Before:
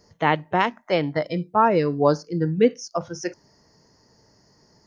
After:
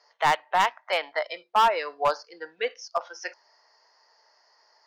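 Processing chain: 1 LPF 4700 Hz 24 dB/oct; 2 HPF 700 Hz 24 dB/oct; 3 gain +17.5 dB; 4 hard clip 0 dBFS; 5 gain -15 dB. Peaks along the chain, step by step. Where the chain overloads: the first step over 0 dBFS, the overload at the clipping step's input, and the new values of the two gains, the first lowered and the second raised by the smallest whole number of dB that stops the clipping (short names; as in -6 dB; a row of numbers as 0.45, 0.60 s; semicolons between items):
-4.0, -7.5, +10.0, 0.0, -15.0 dBFS; step 3, 10.0 dB; step 3 +7.5 dB, step 5 -5 dB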